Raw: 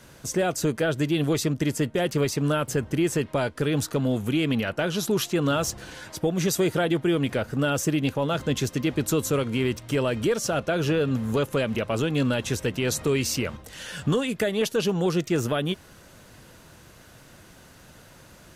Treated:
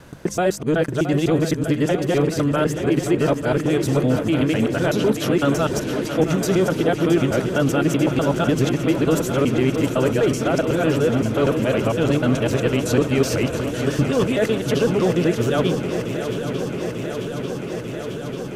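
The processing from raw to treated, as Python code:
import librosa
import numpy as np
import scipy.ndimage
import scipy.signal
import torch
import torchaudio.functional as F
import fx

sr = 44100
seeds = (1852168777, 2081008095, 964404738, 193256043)

p1 = fx.local_reverse(x, sr, ms=126.0)
p2 = fx.high_shelf(p1, sr, hz=2600.0, db=-8.5)
p3 = fx.hum_notches(p2, sr, base_hz=50, count=4)
p4 = fx.rider(p3, sr, range_db=3, speed_s=0.5)
p5 = p3 + F.gain(torch.from_numpy(p4), -1.5).numpy()
p6 = fx.vibrato(p5, sr, rate_hz=1.9, depth_cents=5.0)
y = p6 + fx.echo_swing(p6, sr, ms=893, ratio=3, feedback_pct=79, wet_db=-10, dry=0)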